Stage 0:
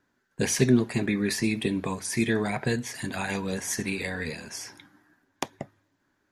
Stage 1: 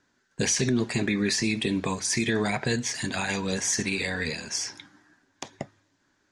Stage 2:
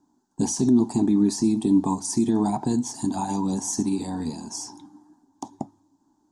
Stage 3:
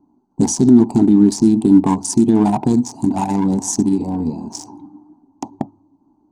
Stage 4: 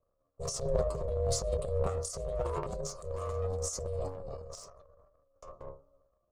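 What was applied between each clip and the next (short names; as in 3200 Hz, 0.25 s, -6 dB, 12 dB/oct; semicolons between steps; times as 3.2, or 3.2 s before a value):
LPF 7400 Hz 24 dB/oct; high shelf 3700 Hz +11 dB; limiter -17 dBFS, peak gain reduction 11.5 dB; gain +1.5 dB
EQ curve 130 Hz 0 dB, 300 Hz +13 dB, 510 Hz -10 dB, 870 Hz +12 dB, 1400 Hz -13 dB, 2100 Hz -26 dB, 3300 Hz -13 dB, 8300 Hz +3 dB; gain -1.5 dB
Wiener smoothing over 25 samples; gain +9 dB
metallic resonator 65 Hz, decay 0.34 s, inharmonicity 0.002; ring modulator 280 Hz; transient shaper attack -5 dB, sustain +12 dB; gain -9 dB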